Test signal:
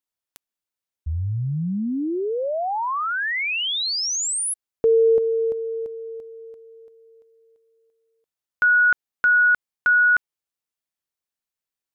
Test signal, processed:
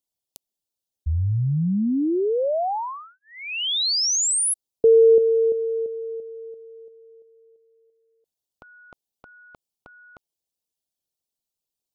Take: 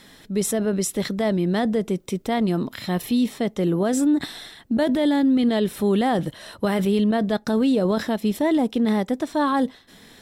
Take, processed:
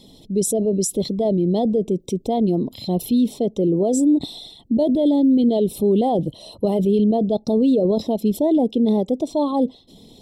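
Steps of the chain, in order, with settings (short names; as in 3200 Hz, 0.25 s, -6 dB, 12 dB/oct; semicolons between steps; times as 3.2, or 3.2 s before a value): formant sharpening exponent 1.5; Butterworth band-stop 1600 Hz, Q 0.66; gain +3 dB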